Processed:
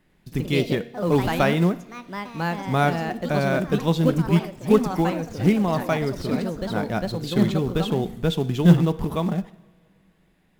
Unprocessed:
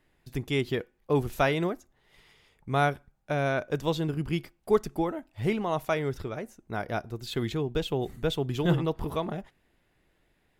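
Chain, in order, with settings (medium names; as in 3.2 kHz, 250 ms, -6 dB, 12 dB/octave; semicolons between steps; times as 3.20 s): peaking EQ 190 Hz +12.5 dB 0.51 oct; ever faster or slower copies 96 ms, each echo +3 st, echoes 3, each echo -6 dB; two-slope reverb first 0.84 s, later 3.1 s, from -18 dB, DRR 15.5 dB; in parallel at -6.5 dB: short-mantissa float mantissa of 2-bit; on the sum: de-hum 233.6 Hz, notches 30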